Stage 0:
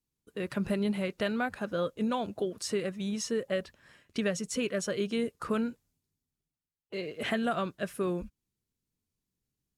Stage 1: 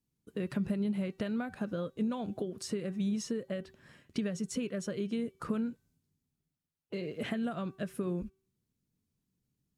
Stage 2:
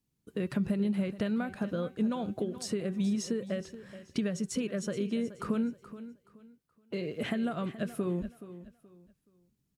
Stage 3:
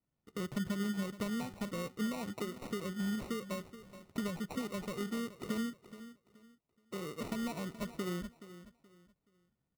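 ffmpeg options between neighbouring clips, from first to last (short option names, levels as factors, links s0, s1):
-af "acompressor=threshold=0.0141:ratio=4,equalizer=f=170:w=0.57:g=9.5,bandreject=f=382.4:t=h:w=4,bandreject=f=764.8:t=h:w=4,bandreject=f=1147.2:t=h:w=4,bandreject=f=1529.6:t=h:w=4,bandreject=f=1912:t=h:w=4,bandreject=f=2294.4:t=h:w=4,bandreject=f=2676.8:t=h:w=4,bandreject=f=3059.2:t=h:w=4,bandreject=f=3441.6:t=h:w=4,bandreject=f=3824:t=h:w=4,bandreject=f=4206.4:t=h:w=4,bandreject=f=4588.8:t=h:w=4,volume=0.841"
-af "aecho=1:1:425|850|1275:0.188|0.0527|0.0148,volume=1.33"
-af "acrusher=samples=27:mix=1:aa=0.000001,volume=0.501"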